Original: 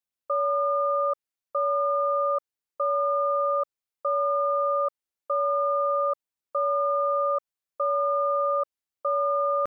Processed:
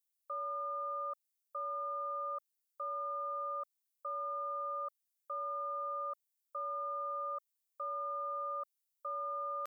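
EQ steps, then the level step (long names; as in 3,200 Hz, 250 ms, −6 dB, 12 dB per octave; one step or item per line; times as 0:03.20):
first difference
+3.0 dB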